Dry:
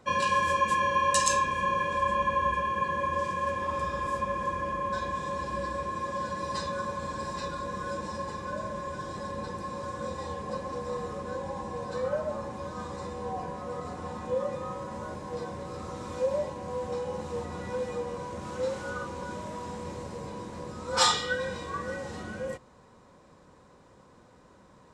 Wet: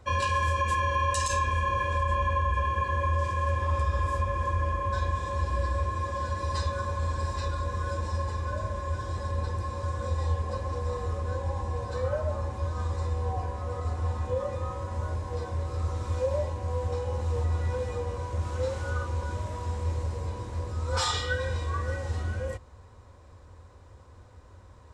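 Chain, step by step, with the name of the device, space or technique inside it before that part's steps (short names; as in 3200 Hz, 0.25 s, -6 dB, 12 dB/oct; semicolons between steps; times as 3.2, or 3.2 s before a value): car stereo with a boomy subwoofer (resonant low shelf 120 Hz +11 dB, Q 3; limiter -18 dBFS, peak gain reduction 11 dB)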